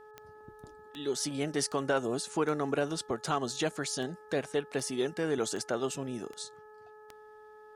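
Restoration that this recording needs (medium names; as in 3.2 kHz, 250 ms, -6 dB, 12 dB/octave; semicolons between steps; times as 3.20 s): de-click; de-hum 427.3 Hz, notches 4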